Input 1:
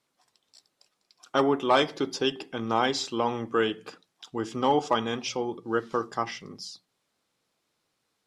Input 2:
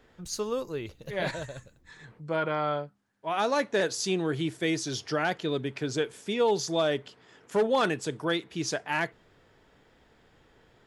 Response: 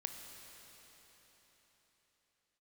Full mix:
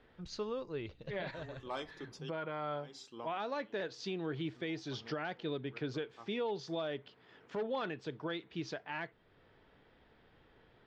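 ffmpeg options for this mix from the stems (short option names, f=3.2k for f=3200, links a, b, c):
-filter_complex "[0:a]volume=-19.5dB[a];[1:a]lowpass=f=4.3k:w=0.5412,lowpass=f=4.3k:w=1.3066,volume=-4dB,asplit=2[b][c];[c]apad=whole_len=364592[d];[a][d]sidechaincompress=threshold=-47dB:ratio=5:attack=10:release=147[e];[e][b]amix=inputs=2:normalize=0,alimiter=level_in=4.5dB:limit=-24dB:level=0:latency=1:release=421,volume=-4.5dB"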